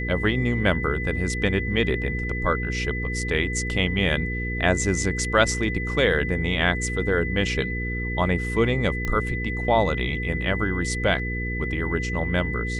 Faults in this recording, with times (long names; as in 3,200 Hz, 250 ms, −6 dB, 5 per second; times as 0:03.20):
mains hum 60 Hz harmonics 8 −29 dBFS
whistle 2,000 Hz −30 dBFS
0:09.05: click −15 dBFS